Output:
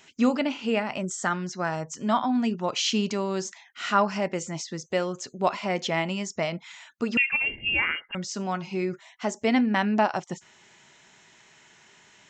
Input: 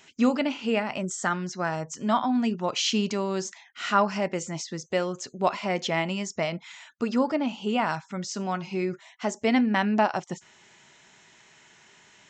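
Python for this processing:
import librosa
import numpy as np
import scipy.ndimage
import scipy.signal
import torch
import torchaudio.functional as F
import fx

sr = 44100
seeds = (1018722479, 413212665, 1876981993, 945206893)

y = fx.freq_invert(x, sr, carrier_hz=3000, at=(7.17, 8.15))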